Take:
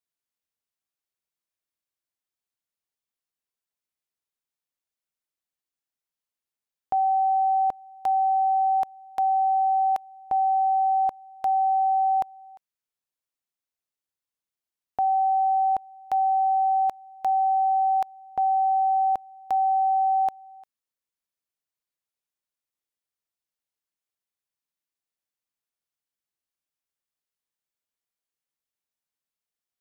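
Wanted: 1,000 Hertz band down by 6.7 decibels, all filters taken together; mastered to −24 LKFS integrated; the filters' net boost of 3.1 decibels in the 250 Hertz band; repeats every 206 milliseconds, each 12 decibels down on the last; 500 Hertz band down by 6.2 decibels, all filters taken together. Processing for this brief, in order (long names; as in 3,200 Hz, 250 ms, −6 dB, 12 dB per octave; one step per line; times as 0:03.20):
parametric band 250 Hz +6 dB
parametric band 500 Hz −4.5 dB
parametric band 1,000 Hz −8.5 dB
repeating echo 206 ms, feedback 25%, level −12 dB
level +6 dB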